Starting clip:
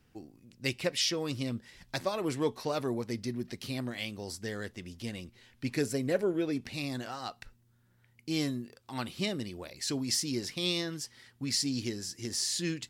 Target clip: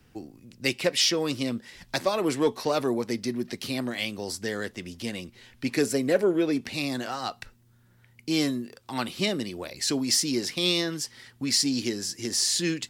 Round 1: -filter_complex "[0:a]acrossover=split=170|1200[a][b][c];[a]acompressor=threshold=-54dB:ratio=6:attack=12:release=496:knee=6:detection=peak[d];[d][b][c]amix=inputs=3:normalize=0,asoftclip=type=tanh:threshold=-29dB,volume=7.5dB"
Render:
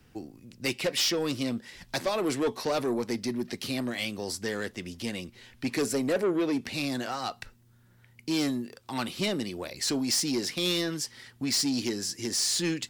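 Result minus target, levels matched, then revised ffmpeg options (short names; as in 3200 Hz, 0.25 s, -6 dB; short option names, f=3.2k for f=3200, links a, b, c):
soft clip: distortion +15 dB
-filter_complex "[0:a]acrossover=split=170|1200[a][b][c];[a]acompressor=threshold=-54dB:ratio=6:attack=12:release=496:knee=6:detection=peak[d];[d][b][c]amix=inputs=3:normalize=0,asoftclip=type=tanh:threshold=-17.5dB,volume=7.5dB"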